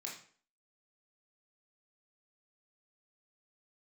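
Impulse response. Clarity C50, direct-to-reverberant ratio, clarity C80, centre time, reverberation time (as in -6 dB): 5.5 dB, -3.0 dB, 10.0 dB, 32 ms, 0.45 s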